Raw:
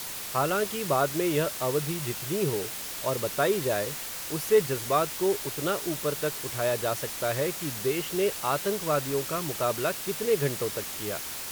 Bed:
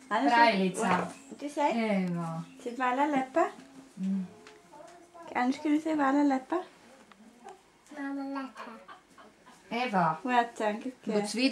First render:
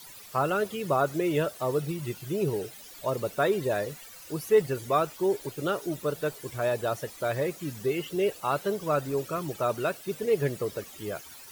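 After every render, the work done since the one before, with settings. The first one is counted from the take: denoiser 15 dB, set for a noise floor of -37 dBFS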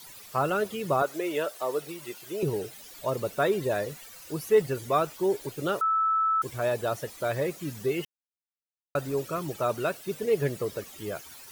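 1.02–2.43 HPF 390 Hz; 5.81–6.42 bleep 1310 Hz -21.5 dBFS; 8.05–8.95 mute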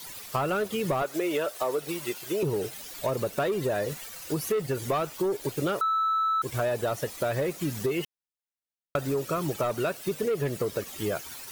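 sample leveller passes 2; compressor, threshold -25 dBFS, peak gain reduction 10.5 dB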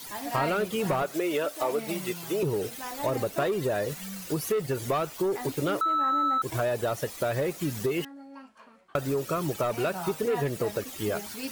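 add bed -10 dB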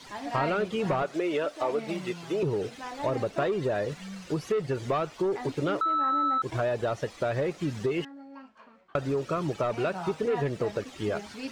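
air absorption 110 m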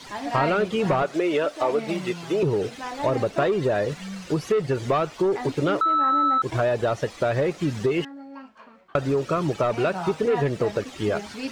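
gain +5.5 dB

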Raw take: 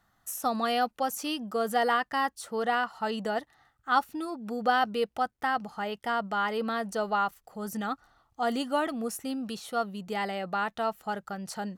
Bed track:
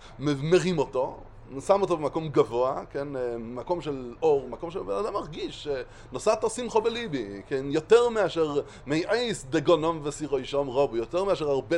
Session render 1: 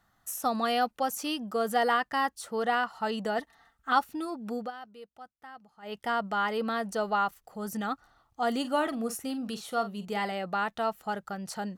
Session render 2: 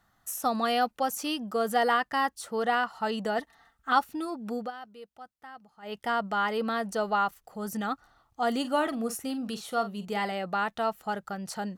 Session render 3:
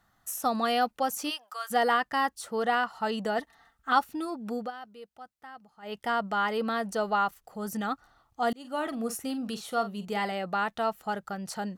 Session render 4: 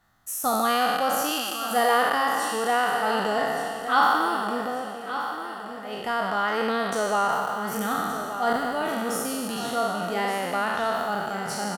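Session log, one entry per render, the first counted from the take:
3.38–3.93 comb 4.4 ms, depth 77%; 4.57–5.96 dip -19 dB, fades 0.14 s; 8.6–10.32 doubler 44 ms -12 dB
gain +1 dB
1.29–1.7 HPF 580 Hz -> 1200 Hz 24 dB/oct; 8.53–9.22 fade in equal-power
spectral trails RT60 2.26 s; on a send: feedback echo 1.175 s, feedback 42%, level -10.5 dB

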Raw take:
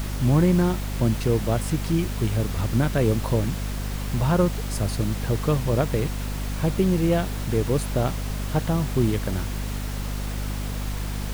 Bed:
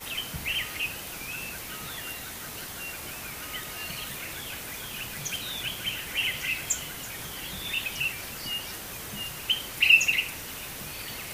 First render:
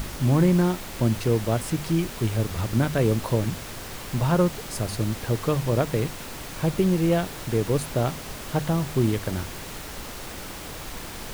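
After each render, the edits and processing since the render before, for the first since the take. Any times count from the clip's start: de-hum 50 Hz, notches 5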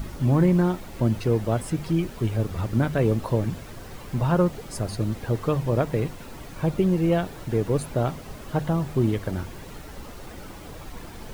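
denoiser 10 dB, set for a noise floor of -37 dBFS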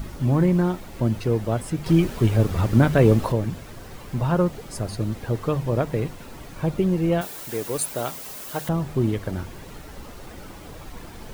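1.86–3.32 gain +6 dB; 7.21–8.69 RIAA curve recording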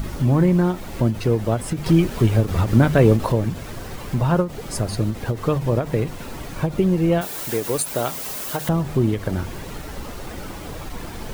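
in parallel at +2 dB: compressor, threshold -28 dBFS, peak gain reduction 16 dB; on the sum: ending taper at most 190 dB/s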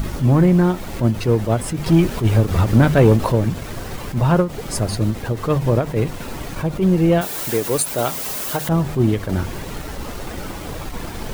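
sample leveller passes 1; attack slew limiter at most 210 dB/s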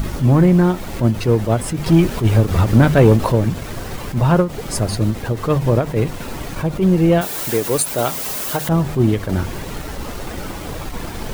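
gain +1.5 dB

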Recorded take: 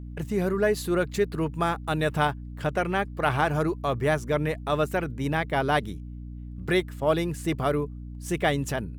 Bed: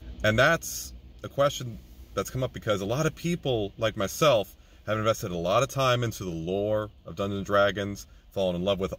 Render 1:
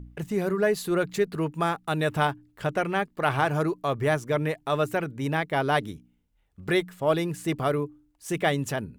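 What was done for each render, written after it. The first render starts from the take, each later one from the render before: de-hum 60 Hz, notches 5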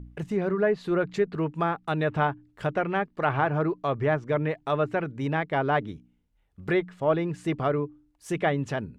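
treble ducked by the level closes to 2300 Hz, closed at -20.5 dBFS; high shelf 4300 Hz -6 dB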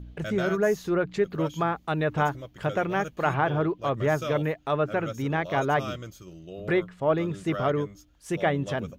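add bed -12 dB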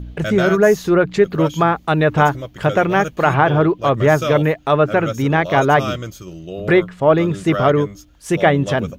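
gain +11 dB; limiter -1 dBFS, peak gain reduction 2 dB

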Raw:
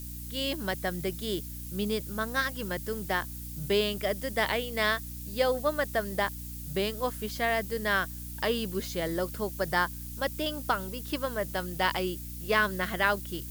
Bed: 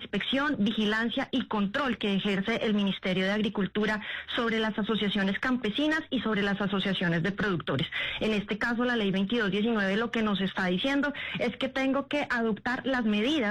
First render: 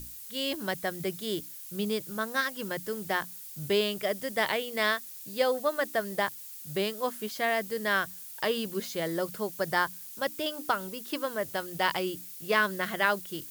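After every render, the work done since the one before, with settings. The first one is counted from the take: notches 60/120/180/240/300 Hz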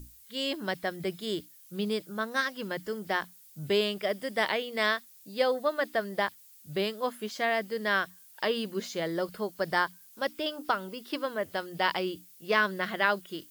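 noise print and reduce 11 dB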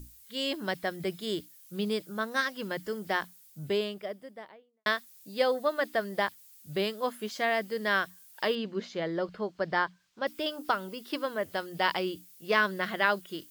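3.22–4.86 studio fade out; 8.55–10.27 air absorption 160 m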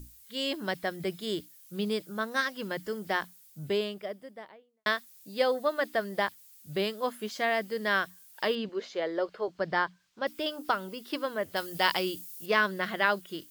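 8.69–9.48 resonant low shelf 290 Hz -11.5 dB, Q 1.5; 11.56–12.46 high shelf 4100 Hz +11 dB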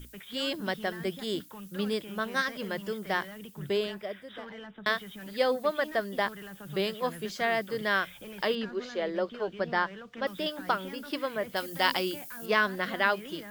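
add bed -17 dB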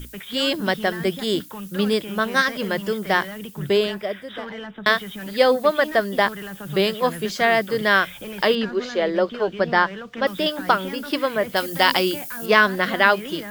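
gain +10 dB; limiter -1 dBFS, peak gain reduction 2.5 dB

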